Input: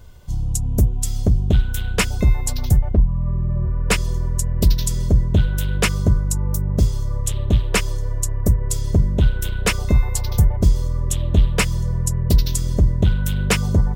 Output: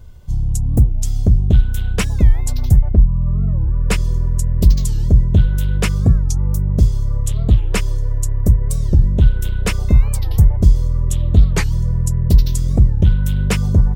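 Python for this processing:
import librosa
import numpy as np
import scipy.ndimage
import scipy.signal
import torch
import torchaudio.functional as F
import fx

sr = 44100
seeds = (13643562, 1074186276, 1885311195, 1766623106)

y = fx.low_shelf(x, sr, hz=260.0, db=8.5)
y = fx.record_warp(y, sr, rpm=45.0, depth_cents=250.0)
y = y * librosa.db_to_amplitude(-3.5)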